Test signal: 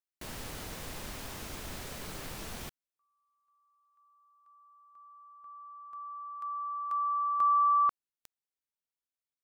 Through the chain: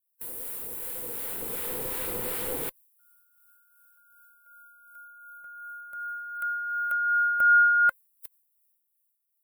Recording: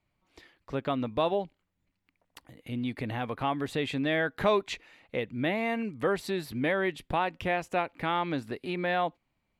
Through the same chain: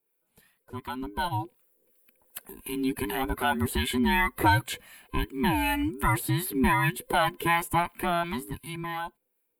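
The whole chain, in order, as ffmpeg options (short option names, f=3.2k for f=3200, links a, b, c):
-filter_complex "[0:a]afftfilt=real='real(if(between(b,1,1008),(2*floor((b-1)/24)+1)*24-b,b),0)':imag='imag(if(between(b,1,1008),(2*floor((b-1)/24)+1)*24-b,b),0)*if(between(b,1,1008),-1,1)':win_size=2048:overlap=0.75,dynaudnorm=f=230:g=13:m=14.5dB,acrossover=split=890[a][b];[a]aeval=exprs='val(0)*(1-0.5/2+0.5/2*cos(2*PI*2.7*n/s))':c=same[c];[b]aeval=exprs='val(0)*(1-0.5/2-0.5/2*cos(2*PI*2.7*n/s))':c=same[d];[c][d]amix=inputs=2:normalize=0,aexciter=amount=12.6:drive=7.5:freq=8.6k,acrossover=split=4300[e][f];[f]acompressor=threshold=-26dB:ratio=4:attack=1:release=60[g];[e][g]amix=inputs=2:normalize=0,volume=-6dB"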